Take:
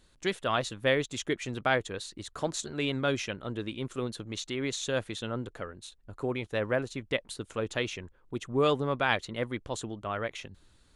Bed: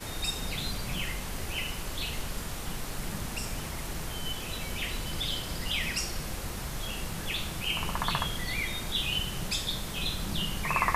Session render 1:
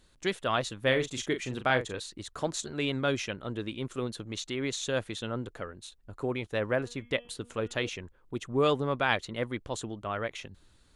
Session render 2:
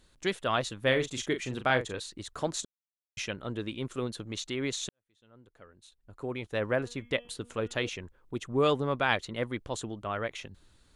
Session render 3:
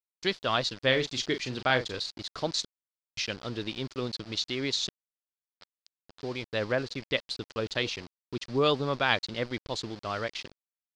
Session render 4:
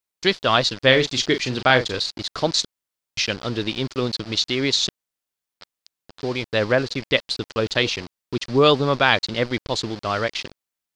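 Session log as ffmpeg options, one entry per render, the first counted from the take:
-filter_complex "[0:a]asettb=1/sr,asplit=3[a][b][c];[a]atrim=end=0.814[d];[b]atrim=start=0.81:end=2,asetpts=PTS-STARTPTS,afade=t=in:d=0.004:c=qsin,afade=t=out:st=1.186:d=0.004:c=qsin,asplit=2[e][f];[f]adelay=39,volume=-9dB[g];[e][g]amix=inputs=2:normalize=0,atrim=end_sample=52479[h];[c]atrim=start=1.996[i];[d][h]acrossfade=d=0.004:c1=hsin:c2=qsin[j];[j][i]acrossfade=d=0.004:c1=qsin:c2=hsin,asettb=1/sr,asplit=3[k][l][m];[k]atrim=end=6.754[n];[l]atrim=start=6.75:end=7.89,asetpts=PTS-STARTPTS,afade=t=in:d=0.004:c=qsin,afade=t=out:st=1.136:d=0.004:c=qsin,bandreject=f=239.4:t=h:w=4,bandreject=f=478.8:t=h:w=4,bandreject=f=718.2:t=h:w=4,bandreject=f=957.6:t=h:w=4,bandreject=f=1.197k:t=h:w=4,bandreject=f=1.4364k:t=h:w=4,bandreject=f=1.6758k:t=h:w=4,bandreject=f=1.9152k:t=h:w=4,bandreject=f=2.1546k:t=h:w=4,bandreject=f=2.394k:t=h:w=4,bandreject=f=2.6334k:t=h:w=4,bandreject=f=2.8728k:t=h:w=4,bandreject=f=3.1122k:t=h:w=4,bandreject=f=3.3516k:t=h:w=4[o];[m]atrim=start=7.886[p];[n][o]acrossfade=d=0.004:c1=hsin:c2=qsin[q];[q][p]acrossfade=d=0.004:c1=qsin:c2=hsin"
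-filter_complex "[0:a]asplit=4[a][b][c][d];[a]atrim=end=2.65,asetpts=PTS-STARTPTS,afade=t=out:st=2.646:d=0.004:c=hsin[e];[b]atrim=start=2.65:end=3.17,asetpts=PTS-STARTPTS,volume=0[f];[c]atrim=start=3.17:end=4.89,asetpts=PTS-STARTPTS,afade=t=in:d=0.004:c=hsin,afade=t=out:st=1.716:d=0.004:c=hsin[g];[d]atrim=start=4.89,asetpts=PTS-STARTPTS,afade=t=in:d=1.75:c=qua[h];[e][f][g][h]concat=n=4:v=0:a=1"
-af "aeval=exprs='val(0)*gte(abs(val(0)),0.0075)':c=same,lowpass=f=4.7k:t=q:w=4.2"
-af "volume=9.5dB,alimiter=limit=-1dB:level=0:latency=1"

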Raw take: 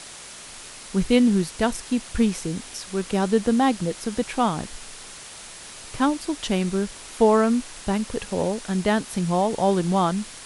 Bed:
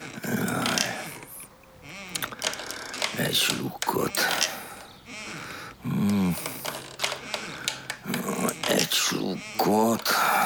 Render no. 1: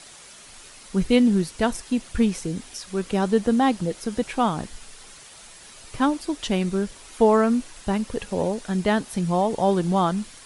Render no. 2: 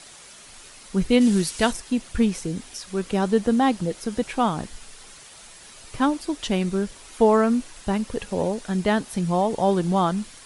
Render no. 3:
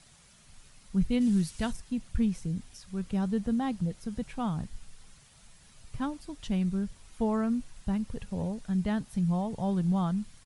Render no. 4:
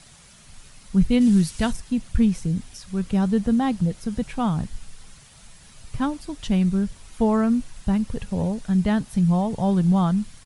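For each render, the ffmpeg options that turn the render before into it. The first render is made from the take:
-af "afftdn=nr=7:nf=-41"
-filter_complex "[0:a]asplit=3[a][b][c];[a]afade=t=out:st=1.2:d=0.02[d];[b]highshelf=f=2.1k:g=10,afade=t=in:st=1.2:d=0.02,afade=t=out:st=1.71:d=0.02[e];[c]afade=t=in:st=1.71:d=0.02[f];[d][e][f]amix=inputs=3:normalize=0"
-af "firequalizer=gain_entry='entry(150,0);entry(330,-16);entry(700,-14)':delay=0.05:min_phase=1"
-af "volume=8.5dB"

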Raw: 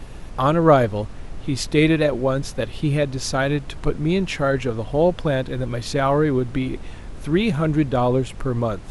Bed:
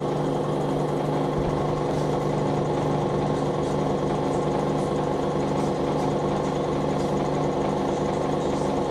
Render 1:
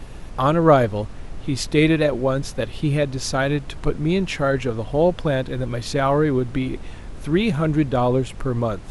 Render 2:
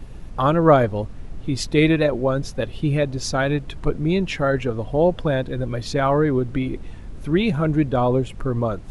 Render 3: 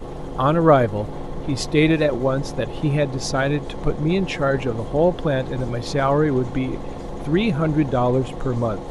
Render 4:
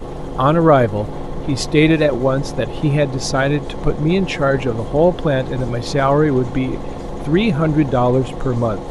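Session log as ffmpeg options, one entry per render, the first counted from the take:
-af anull
-af "afftdn=nr=7:nf=-36"
-filter_complex "[1:a]volume=-9dB[a];[0:a][a]amix=inputs=2:normalize=0"
-af "volume=4dB,alimiter=limit=-2dB:level=0:latency=1"

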